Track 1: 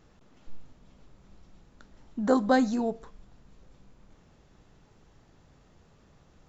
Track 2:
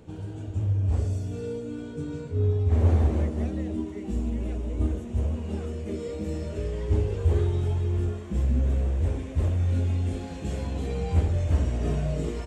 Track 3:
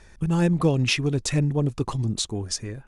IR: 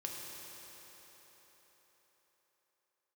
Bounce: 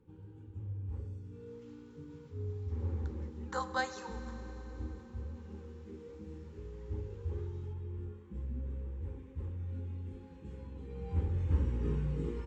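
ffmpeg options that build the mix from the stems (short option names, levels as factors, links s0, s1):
-filter_complex "[0:a]highpass=f=700:w=0.5412,highpass=f=700:w=1.3066,dynaudnorm=f=130:g=3:m=3.16,adelay=1250,volume=0.15,asplit=2[s0][s1];[s1]volume=0.501[s2];[1:a]lowpass=f=1400:p=1,volume=0.473,afade=t=in:st=10.88:d=0.63:silence=0.354813[s3];[3:a]atrim=start_sample=2205[s4];[s2][s4]afir=irnorm=-1:irlink=0[s5];[s0][s3][s5]amix=inputs=3:normalize=0,asuperstop=centerf=660:order=12:qfactor=3.1"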